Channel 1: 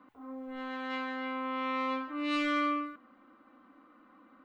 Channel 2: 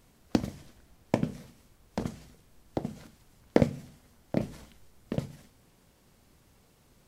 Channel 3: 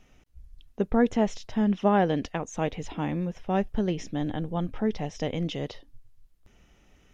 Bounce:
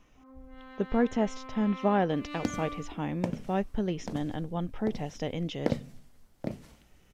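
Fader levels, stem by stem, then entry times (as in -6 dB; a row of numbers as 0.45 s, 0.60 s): -10.0 dB, -6.0 dB, -3.5 dB; 0.00 s, 2.10 s, 0.00 s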